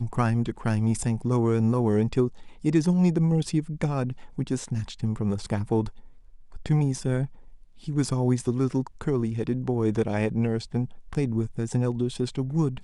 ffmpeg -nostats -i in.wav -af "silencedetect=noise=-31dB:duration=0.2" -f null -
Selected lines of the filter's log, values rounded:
silence_start: 2.28
silence_end: 2.65 | silence_duration: 0.36
silence_start: 4.12
silence_end: 4.38 | silence_duration: 0.26
silence_start: 5.89
silence_end: 6.55 | silence_duration: 0.66
silence_start: 7.26
silence_end: 7.88 | silence_duration: 0.61
silence_start: 10.85
silence_end: 11.13 | silence_duration: 0.27